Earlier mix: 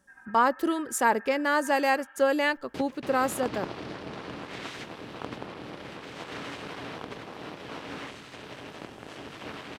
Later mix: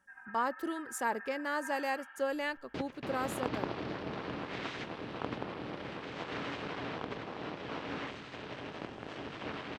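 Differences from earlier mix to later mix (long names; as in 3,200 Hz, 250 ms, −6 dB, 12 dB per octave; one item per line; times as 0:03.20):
speech −10.0 dB
second sound: add high-frequency loss of the air 120 metres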